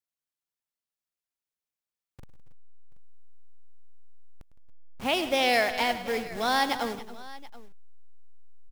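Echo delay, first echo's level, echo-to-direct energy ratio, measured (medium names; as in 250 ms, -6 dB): 104 ms, -14.5 dB, -10.0 dB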